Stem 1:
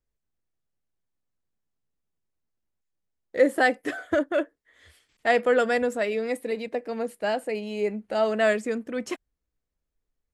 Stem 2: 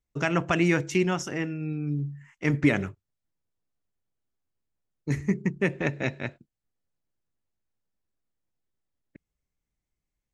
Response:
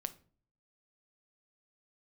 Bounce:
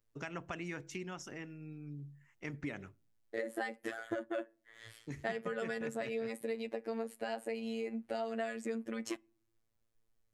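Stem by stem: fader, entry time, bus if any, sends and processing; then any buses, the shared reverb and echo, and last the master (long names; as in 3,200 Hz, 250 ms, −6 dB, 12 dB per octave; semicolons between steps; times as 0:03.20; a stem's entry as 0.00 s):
+2.5 dB, 0.00 s, send −15.5 dB, downward compressor 3 to 1, threshold −29 dBFS, peak gain reduction 11.5 dB; phases set to zero 113 Hz
−12.5 dB, 0.00 s, send −16 dB, harmonic and percussive parts rebalanced harmonic −5 dB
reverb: on, RT60 0.45 s, pre-delay 6 ms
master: downward compressor 2 to 1, threshold −41 dBFS, peak gain reduction 11 dB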